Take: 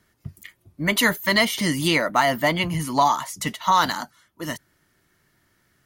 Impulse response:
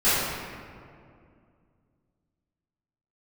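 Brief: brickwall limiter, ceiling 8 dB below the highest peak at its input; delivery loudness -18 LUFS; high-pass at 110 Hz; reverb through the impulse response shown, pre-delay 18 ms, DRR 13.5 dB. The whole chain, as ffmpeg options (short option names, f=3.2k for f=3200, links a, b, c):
-filter_complex "[0:a]highpass=110,alimiter=limit=-14.5dB:level=0:latency=1,asplit=2[a][b];[1:a]atrim=start_sample=2205,adelay=18[c];[b][c]afir=irnorm=-1:irlink=0,volume=-32dB[d];[a][d]amix=inputs=2:normalize=0,volume=7.5dB"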